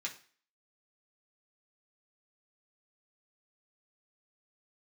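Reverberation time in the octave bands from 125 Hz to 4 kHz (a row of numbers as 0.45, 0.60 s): 0.40, 0.40, 0.40, 0.45, 0.45, 0.45 s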